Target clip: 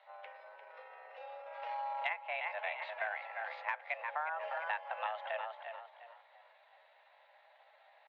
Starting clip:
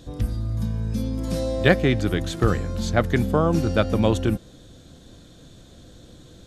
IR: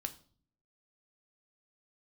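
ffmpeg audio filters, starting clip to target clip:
-filter_complex "[0:a]asplit=2[a][b];[b]asplit=4[c][d][e][f];[c]adelay=279,afreqshift=32,volume=-9.5dB[g];[d]adelay=558,afreqshift=64,volume=-19.4dB[h];[e]adelay=837,afreqshift=96,volume=-29.3dB[i];[f]adelay=1116,afreqshift=128,volume=-39.2dB[j];[g][h][i][j]amix=inputs=4:normalize=0[k];[a][k]amix=inputs=2:normalize=0,highpass=f=300:t=q:w=0.5412,highpass=f=300:t=q:w=1.307,lowpass=f=2.3k:t=q:w=0.5176,lowpass=f=2.3k:t=q:w=0.7071,lowpass=f=2.3k:t=q:w=1.932,afreqshift=300,aderivative,acompressor=threshold=-41dB:ratio=10,atempo=0.8,volume=7.5dB"

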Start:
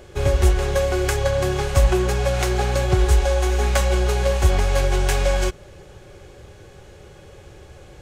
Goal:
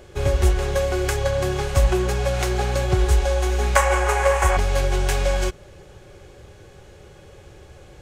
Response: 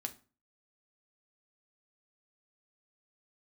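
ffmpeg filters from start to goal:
-filter_complex "[0:a]asettb=1/sr,asplit=3[a][b][c];[a]atrim=end=3.764[d];[b]atrim=start=3.76:end=4.57,asetpts=PTS-STARTPTS,afade=t=in:d=0.004:c=qsin,afade=t=out:st=0.806:d=0.004:c=qsin,equalizer=f=125:t=o:w=1:g=-10,equalizer=f=250:t=o:w=1:g=-11,equalizer=f=500:t=o:w=1:g=4,equalizer=f=1k:t=o:w=1:g=11,equalizer=f=2k:t=o:w=1:g=9,equalizer=f=4k:t=o:w=1:g=-8,equalizer=f=8k:t=o:w=1:g=7[e];[c]atrim=start=4.566[f];[d][e]acrossfade=d=0.004:c1=hsin:c2=qsin[g];[g][f]acrossfade=d=0.004:c1=qsin:c2=hsin,volume=-1.5dB"

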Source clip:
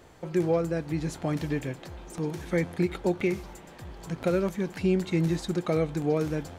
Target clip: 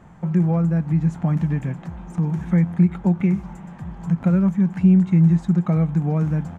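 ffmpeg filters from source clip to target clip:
-filter_complex "[0:a]firequalizer=gain_entry='entry(110,0);entry(180,13);entry(280,-5);entry(450,-10);entry(840,0);entry(4400,-19);entry(6800,-11);entry(12000,-20)':delay=0.05:min_phase=1,asplit=2[a][b];[b]acompressor=threshold=-26dB:ratio=6,volume=1dB[c];[a][c]amix=inputs=2:normalize=0"

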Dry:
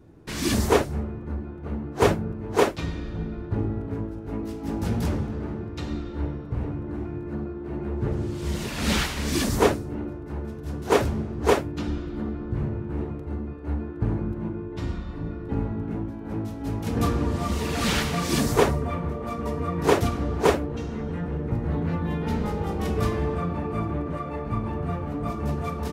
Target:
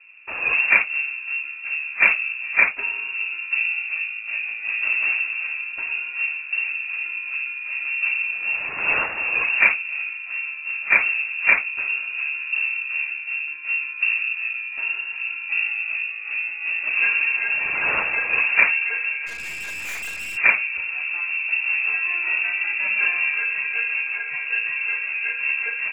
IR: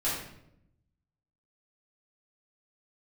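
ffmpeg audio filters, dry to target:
-filter_complex "[0:a]lowpass=f=2.4k:t=q:w=0.5098,lowpass=f=2.4k:t=q:w=0.6013,lowpass=f=2.4k:t=q:w=0.9,lowpass=f=2.4k:t=q:w=2.563,afreqshift=-2800,asplit=3[a][b][c];[a]afade=t=out:st=19.26:d=0.02[d];[b]aeval=exprs='(tanh(39.8*val(0)+0.4)-tanh(0.4))/39.8':c=same,afade=t=in:st=19.26:d=0.02,afade=t=out:st=20.36:d=0.02[e];[c]afade=t=in:st=20.36:d=0.02[f];[d][e][f]amix=inputs=3:normalize=0,volume=3dB"

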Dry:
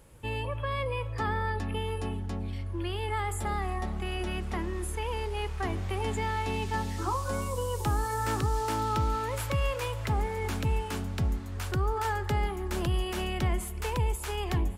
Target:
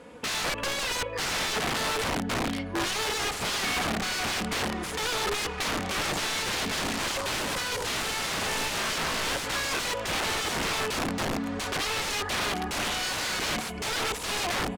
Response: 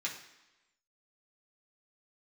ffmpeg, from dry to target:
-filter_complex "[0:a]highpass=200,aecho=1:1:4.1:0.85,asplit=2[a][b];[b]alimiter=level_in=3.5dB:limit=-24dB:level=0:latency=1:release=418,volume=-3.5dB,volume=1dB[c];[a][c]amix=inputs=2:normalize=0,aeval=exprs='(mod(23.7*val(0)+1,2)-1)/23.7':c=same,adynamicsmooth=sensitivity=7.5:basefreq=4k,volume=5dB"

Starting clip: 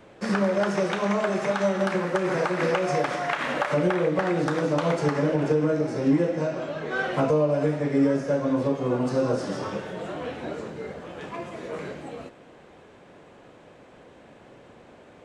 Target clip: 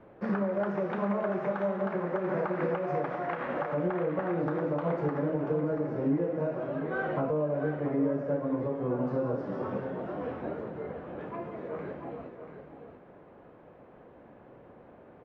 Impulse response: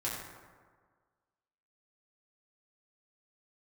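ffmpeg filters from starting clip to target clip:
-af "lowpass=1.4k,alimiter=limit=-18dB:level=0:latency=1:release=433,aecho=1:1:686:0.355,volume=-3dB"

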